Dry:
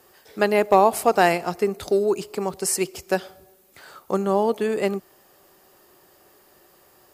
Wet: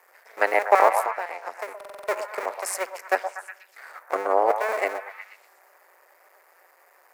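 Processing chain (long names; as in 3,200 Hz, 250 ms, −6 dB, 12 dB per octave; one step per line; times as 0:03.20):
sub-harmonics by changed cycles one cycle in 2, muted
0:01.02–0:02.00: downward compressor 16 to 1, threshold −29 dBFS, peak gain reduction 18.5 dB
0:04.15–0:04.56: tilt shelving filter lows +4 dB, about 1,400 Hz
high-pass filter 510 Hz 24 dB per octave
high shelf with overshoot 2,600 Hz −6 dB, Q 3
on a send: echo through a band-pass that steps 121 ms, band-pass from 770 Hz, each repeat 0.7 octaves, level −6 dB
on the sum: buffer that repeats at 0:01.76, samples 2,048, times 6
level +2.5 dB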